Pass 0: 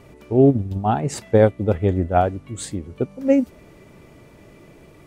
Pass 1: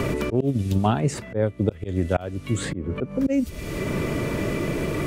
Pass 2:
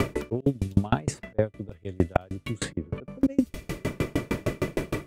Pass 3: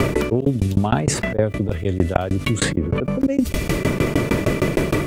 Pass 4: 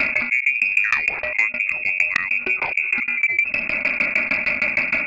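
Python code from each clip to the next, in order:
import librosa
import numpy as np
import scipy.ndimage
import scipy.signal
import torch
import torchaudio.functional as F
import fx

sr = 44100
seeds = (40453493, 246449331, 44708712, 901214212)

y1 = fx.peak_eq(x, sr, hz=790.0, db=-9.0, octaves=0.32)
y1 = fx.auto_swell(y1, sr, attack_ms=504.0)
y1 = fx.band_squash(y1, sr, depth_pct=100)
y1 = y1 * librosa.db_to_amplitude(7.0)
y2 = fx.tremolo_decay(y1, sr, direction='decaying', hz=6.5, depth_db=35)
y2 = y2 * librosa.db_to_amplitude(5.0)
y3 = fx.env_flatten(y2, sr, amount_pct=70)
y3 = y3 * librosa.db_to_amplitude(2.5)
y4 = fx.freq_invert(y3, sr, carrier_hz=2600)
y4 = fx.transformer_sat(y4, sr, knee_hz=1600.0)
y4 = y4 * librosa.db_to_amplitude(-1.0)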